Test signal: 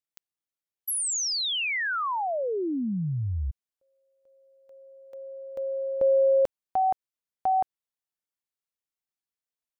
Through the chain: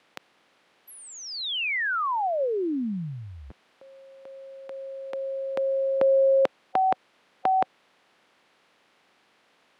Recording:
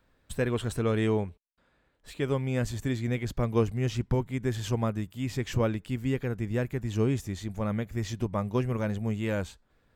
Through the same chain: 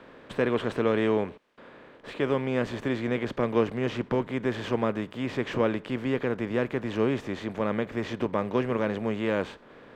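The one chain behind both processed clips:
compressor on every frequency bin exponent 0.6
three-way crossover with the lows and the highs turned down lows −18 dB, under 170 Hz, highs −20 dB, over 3,900 Hz
level +1 dB

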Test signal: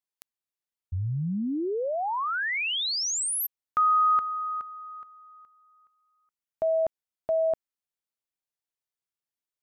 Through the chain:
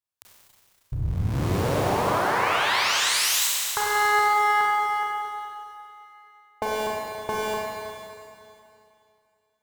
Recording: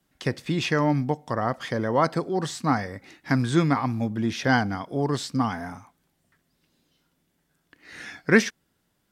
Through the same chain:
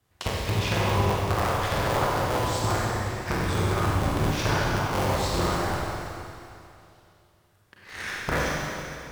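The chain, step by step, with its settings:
sub-harmonics by changed cycles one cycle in 3, inverted
graphic EQ with 15 bands 100 Hz +11 dB, 250 Hz −6 dB, 1,000 Hz +4 dB
leveller curve on the samples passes 1
downward compressor 6 to 1, threshold −27 dBFS
four-comb reverb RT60 2.6 s, combs from 31 ms, DRR −4.5 dB

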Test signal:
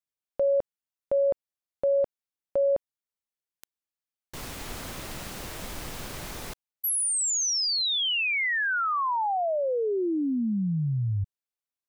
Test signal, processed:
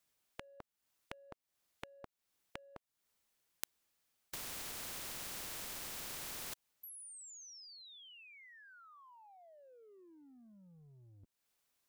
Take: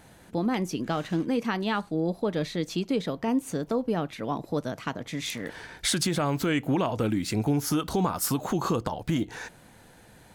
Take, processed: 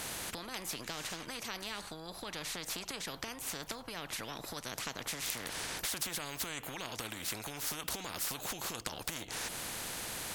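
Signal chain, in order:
downward compressor 4 to 1, threshold −40 dBFS
every bin compressed towards the loudest bin 4 to 1
level +11 dB

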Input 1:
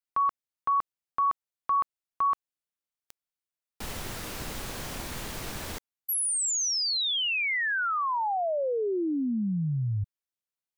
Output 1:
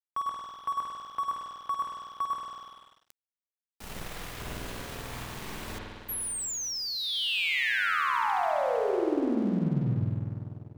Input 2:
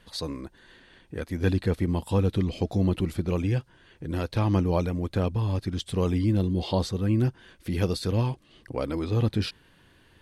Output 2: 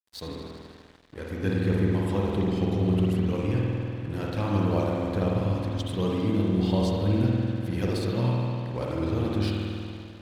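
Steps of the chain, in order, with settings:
spring reverb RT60 2.8 s, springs 49 ms, chirp 30 ms, DRR −4 dB
dead-zone distortion −41 dBFS
level −4 dB

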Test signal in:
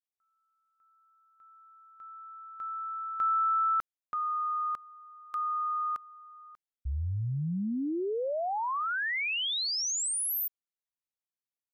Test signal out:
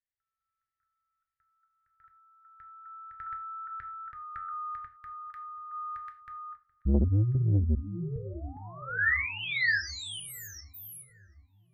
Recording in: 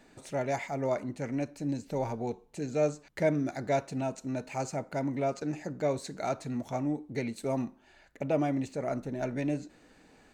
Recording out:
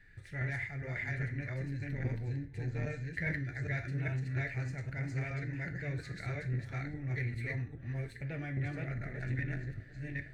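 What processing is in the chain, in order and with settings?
delay that plays each chunk backwards 408 ms, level 0 dB
drawn EQ curve 110 Hz 0 dB, 230 Hz −25 dB, 390 Hz −23 dB, 690 Hz −29 dB, 1,100 Hz −29 dB, 1,800 Hz −1 dB, 2,700 Hz −17 dB, 4,600 Hz −19 dB, 6,600 Hz −28 dB, 11,000 Hz −23 dB
on a send: feedback echo with a low-pass in the loop 734 ms, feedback 60%, low-pass 920 Hz, level −18.5 dB
on the sum: reverb whose tail is shaped and stops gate 130 ms falling, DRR 5.5 dB
saturating transformer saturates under 230 Hz
level +8 dB

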